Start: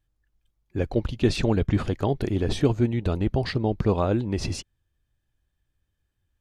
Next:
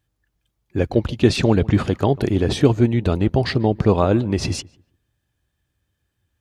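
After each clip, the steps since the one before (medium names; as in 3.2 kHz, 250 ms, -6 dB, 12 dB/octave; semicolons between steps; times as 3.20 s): high-pass 72 Hz; filtered feedback delay 145 ms, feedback 26%, low-pass 2 kHz, level -22 dB; trim +6.5 dB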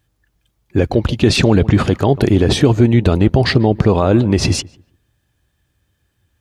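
loudness maximiser +9 dB; trim -1 dB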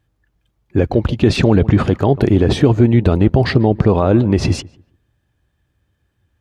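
treble shelf 3.2 kHz -10 dB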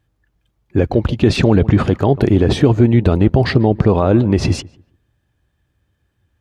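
no audible change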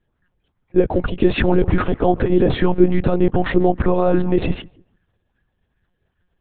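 monotone LPC vocoder at 8 kHz 180 Hz; sweeping bell 2.5 Hz 380–1700 Hz +8 dB; trim -4 dB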